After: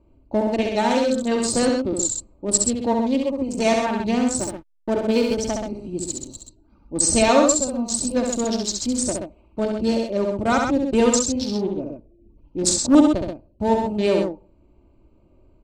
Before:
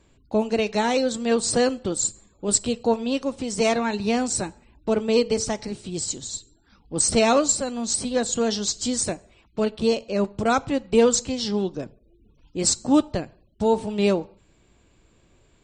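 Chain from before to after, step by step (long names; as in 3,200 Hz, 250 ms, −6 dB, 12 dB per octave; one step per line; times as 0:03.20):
adaptive Wiener filter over 25 samples
loudspeakers that aren't time-aligned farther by 23 metres −4 dB, 44 metres −6 dB
0:04.39–0:05.37: slack as between gear wheels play −36 dBFS
comb filter 3.3 ms, depth 41%
0:11.63–0:12.95: highs frequency-modulated by the lows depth 0.42 ms
level +1 dB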